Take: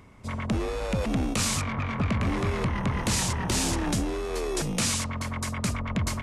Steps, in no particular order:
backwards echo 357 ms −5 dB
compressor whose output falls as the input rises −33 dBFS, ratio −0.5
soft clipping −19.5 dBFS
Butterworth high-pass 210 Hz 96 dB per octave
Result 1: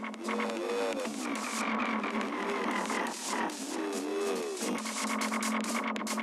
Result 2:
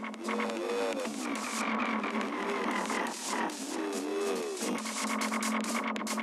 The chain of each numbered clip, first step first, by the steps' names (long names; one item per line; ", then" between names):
Butterworth high-pass, then compressor whose output falls as the input rises, then backwards echo, then soft clipping
Butterworth high-pass, then compressor whose output falls as the input rises, then soft clipping, then backwards echo